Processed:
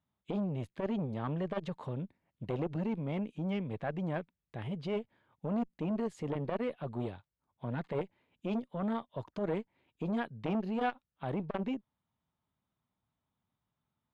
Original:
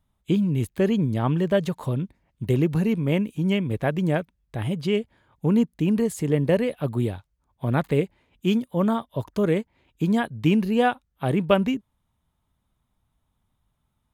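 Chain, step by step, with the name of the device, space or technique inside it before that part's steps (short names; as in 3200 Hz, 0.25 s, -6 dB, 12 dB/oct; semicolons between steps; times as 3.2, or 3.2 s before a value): valve radio (BPF 120–4000 Hz; tube stage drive 9 dB, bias 0.65; core saturation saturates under 790 Hz); gain -5 dB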